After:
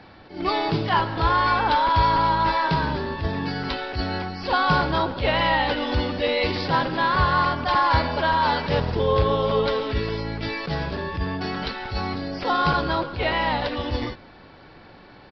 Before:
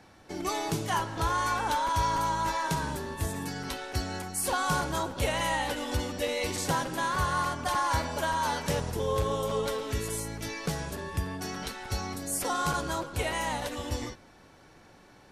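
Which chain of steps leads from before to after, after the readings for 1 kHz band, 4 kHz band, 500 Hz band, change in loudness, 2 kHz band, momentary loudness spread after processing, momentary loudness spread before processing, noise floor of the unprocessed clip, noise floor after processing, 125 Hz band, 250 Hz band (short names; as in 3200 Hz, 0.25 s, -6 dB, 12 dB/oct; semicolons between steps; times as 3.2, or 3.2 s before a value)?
+8.5 dB, +7.5 dB, +8.0 dB, +7.5 dB, +8.5 dB, 9 LU, 8 LU, -56 dBFS, -47 dBFS, +7.5 dB, +8.0 dB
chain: downsampling 11025 Hz; attack slew limiter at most 140 dB/s; gain +8.5 dB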